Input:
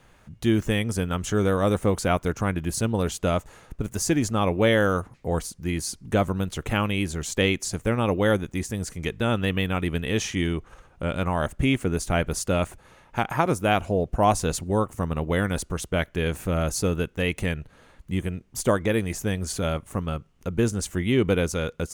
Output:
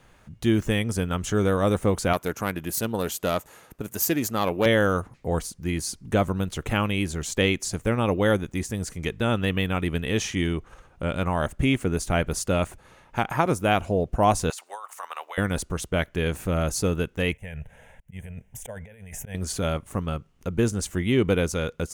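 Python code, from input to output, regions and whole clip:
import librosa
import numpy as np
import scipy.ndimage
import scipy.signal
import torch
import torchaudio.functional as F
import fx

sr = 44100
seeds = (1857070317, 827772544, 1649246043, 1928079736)

y = fx.chain(x, sr, fx.self_delay(depth_ms=0.083),
    fx.highpass(hz=240.0, slope=6),
    fx.peak_eq(hz=13000.0, db=14.0, octaves=0.5), at=(2.13, 4.66))
y = fx.chain(y, sr, fx.highpass(hz=830.0, slope=24),
    fx.over_compress(threshold_db=-36.0, ratio=-1.0), at=(14.5, 15.38))
y = fx.chain(y, sr, fx.auto_swell(attack_ms=291.0),
    fx.over_compress(threshold_db=-36.0, ratio=-1.0),
    fx.fixed_phaser(hz=1200.0, stages=6), at=(17.32, 19.35))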